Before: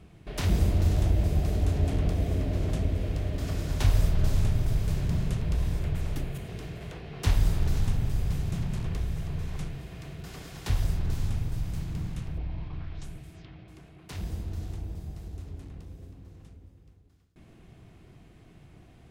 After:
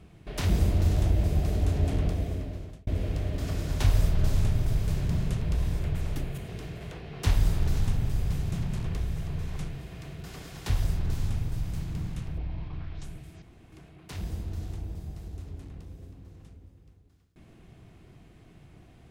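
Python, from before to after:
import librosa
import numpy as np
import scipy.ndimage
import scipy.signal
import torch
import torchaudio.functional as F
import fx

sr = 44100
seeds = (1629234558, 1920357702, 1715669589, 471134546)

y = fx.edit(x, sr, fx.fade_out_span(start_s=2.0, length_s=0.87),
    fx.room_tone_fill(start_s=13.42, length_s=0.3), tone=tone)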